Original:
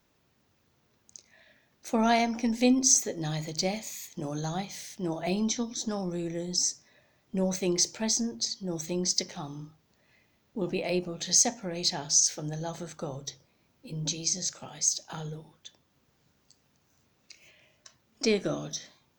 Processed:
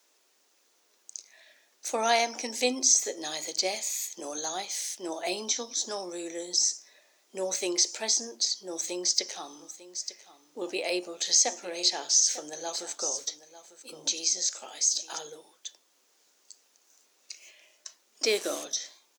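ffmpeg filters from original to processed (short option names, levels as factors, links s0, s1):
-filter_complex "[0:a]asplit=3[s0][s1][s2];[s0]afade=t=out:st=9.6:d=0.02[s3];[s1]aecho=1:1:898:0.168,afade=t=in:st=9.6:d=0.02,afade=t=out:st=15.17:d=0.02[s4];[s2]afade=t=in:st=15.17:d=0.02[s5];[s3][s4][s5]amix=inputs=3:normalize=0,asplit=3[s6][s7][s8];[s6]afade=t=out:st=18.23:d=0.02[s9];[s7]acrusher=bits=6:mix=0:aa=0.5,afade=t=in:st=18.23:d=0.02,afade=t=out:st=18.63:d=0.02[s10];[s8]afade=t=in:st=18.63:d=0.02[s11];[s9][s10][s11]amix=inputs=3:normalize=0,highpass=f=350:w=0.5412,highpass=f=350:w=1.3066,acrossover=split=4400[s12][s13];[s13]acompressor=threshold=0.01:ratio=4:attack=1:release=60[s14];[s12][s14]amix=inputs=2:normalize=0,equalizer=f=8400:t=o:w=1.8:g=13.5"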